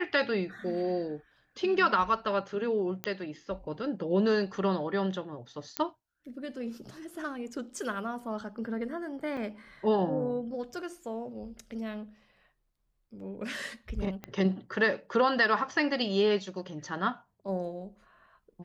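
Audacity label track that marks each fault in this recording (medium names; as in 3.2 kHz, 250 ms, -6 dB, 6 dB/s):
3.040000	3.040000	pop -17 dBFS
5.770000	5.770000	pop -14 dBFS
9.370000	9.370000	dropout 2.6 ms
14.240000	14.240000	pop -24 dBFS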